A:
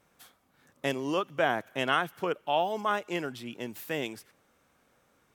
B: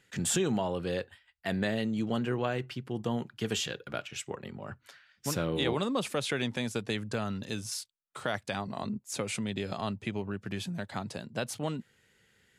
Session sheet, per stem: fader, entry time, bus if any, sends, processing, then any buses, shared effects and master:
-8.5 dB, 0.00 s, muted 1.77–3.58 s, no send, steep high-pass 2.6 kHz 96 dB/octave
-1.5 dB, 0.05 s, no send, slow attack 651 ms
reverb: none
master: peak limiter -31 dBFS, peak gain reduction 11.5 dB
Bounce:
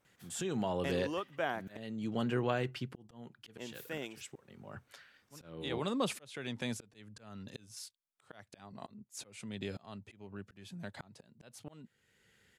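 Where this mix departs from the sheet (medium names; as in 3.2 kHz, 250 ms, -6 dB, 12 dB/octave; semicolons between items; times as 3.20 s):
stem A: missing steep high-pass 2.6 kHz 96 dB/octave; master: missing peak limiter -31 dBFS, peak gain reduction 11.5 dB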